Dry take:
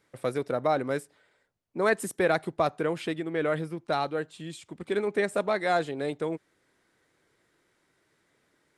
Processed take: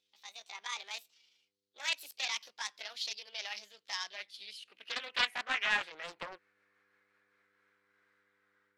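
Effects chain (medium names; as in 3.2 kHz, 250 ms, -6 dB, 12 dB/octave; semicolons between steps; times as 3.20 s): pitch bend over the whole clip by +8.5 st ending unshifted; level rider gain up to 8.5 dB; tilt shelf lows -5 dB, about 1.3 kHz; mains buzz 100 Hz, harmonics 5, -57 dBFS -2 dB/octave; band-pass sweep 4.3 kHz -> 1.4 kHz, 3.67–6.31 s; loudspeaker Doppler distortion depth 0.43 ms; trim -5 dB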